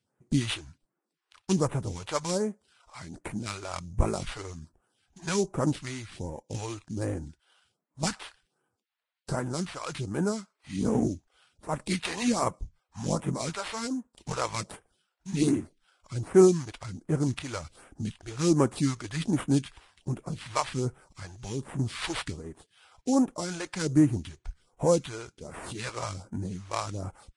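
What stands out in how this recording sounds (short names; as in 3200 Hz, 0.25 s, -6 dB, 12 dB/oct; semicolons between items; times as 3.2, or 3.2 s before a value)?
aliases and images of a low sample rate 6500 Hz, jitter 20%; phasing stages 2, 1.3 Hz, lowest notch 180–4100 Hz; Vorbis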